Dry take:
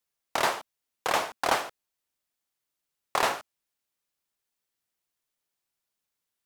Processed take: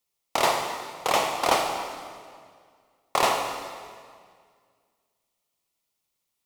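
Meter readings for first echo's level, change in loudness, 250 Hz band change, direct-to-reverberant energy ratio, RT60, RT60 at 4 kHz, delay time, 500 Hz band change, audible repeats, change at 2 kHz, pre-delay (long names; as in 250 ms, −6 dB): no echo audible, +3.0 dB, +5.0 dB, 3.5 dB, 2.0 s, 1.7 s, no echo audible, +5.0 dB, no echo audible, +1.0 dB, 39 ms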